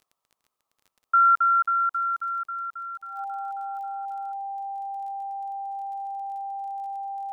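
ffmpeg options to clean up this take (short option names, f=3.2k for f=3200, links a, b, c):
-af "adeclick=t=4,bandreject=f=790:w=30,afftdn=nr=6:nf=-80"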